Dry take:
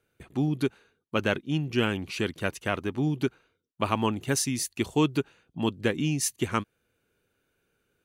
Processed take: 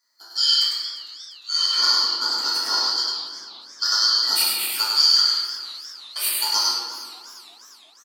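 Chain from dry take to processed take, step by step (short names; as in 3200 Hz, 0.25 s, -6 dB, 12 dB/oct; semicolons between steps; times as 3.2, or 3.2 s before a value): four-band scrambler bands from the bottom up 2413; Bessel high-pass 480 Hz, order 6; step gate "xxxx.....xxxx.x" 95 bpm -60 dB; formant shift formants +6 st; echo 0.101 s -3 dB; reverb RT60 1.7 s, pre-delay 3 ms, DRR -7 dB; warbling echo 0.353 s, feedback 58%, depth 133 cents, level -17.5 dB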